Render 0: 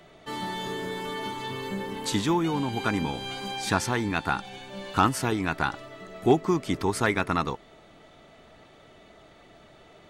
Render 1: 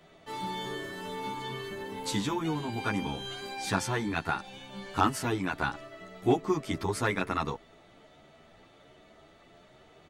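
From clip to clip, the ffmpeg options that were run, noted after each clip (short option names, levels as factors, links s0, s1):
-filter_complex "[0:a]asplit=2[s0][s1];[s1]adelay=10.3,afreqshift=1.2[s2];[s0][s2]amix=inputs=2:normalize=1,volume=0.891"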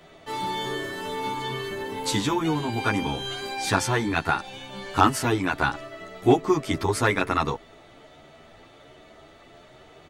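-af "equalizer=f=190:t=o:w=0.28:g=-7,volume=2.24"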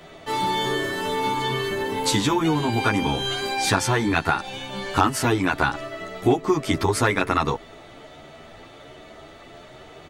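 -af "acompressor=threshold=0.0631:ratio=2.5,volume=2"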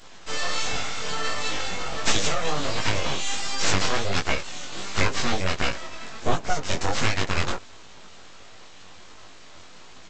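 -af "bass=f=250:g=0,treble=f=4000:g=12,aresample=16000,aeval=exprs='abs(val(0))':c=same,aresample=44100,flanger=delay=18.5:depth=3.8:speed=1.4,volume=1.19"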